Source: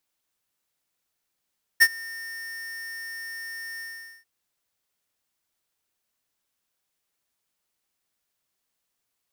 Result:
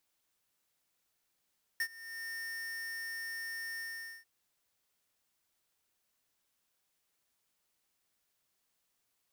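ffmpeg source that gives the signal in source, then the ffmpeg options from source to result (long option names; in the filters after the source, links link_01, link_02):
-f lavfi -i "aevalsrc='0.237*(2*lt(mod(1820*t,1),0.5)-1)':duration=2.444:sample_rate=44100,afade=type=in:duration=0.021,afade=type=out:start_time=0.021:duration=0.054:silence=0.0631,afade=type=out:start_time=2:duration=0.444"
-af "acompressor=threshold=-43dB:ratio=3"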